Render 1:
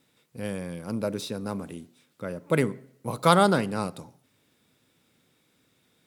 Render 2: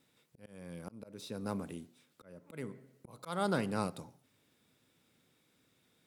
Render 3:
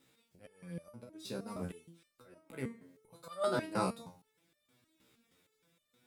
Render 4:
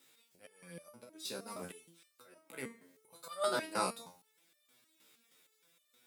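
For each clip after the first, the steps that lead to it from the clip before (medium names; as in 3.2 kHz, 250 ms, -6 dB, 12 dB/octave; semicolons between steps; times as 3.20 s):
slow attack 462 ms; trim -5 dB
hum notches 50/100/150/200 Hz; resonator arpeggio 6.4 Hz 65–600 Hz; trim +10.5 dB
high-pass 270 Hz 6 dB/octave; tilt EQ +2 dB/octave; trim +1 dB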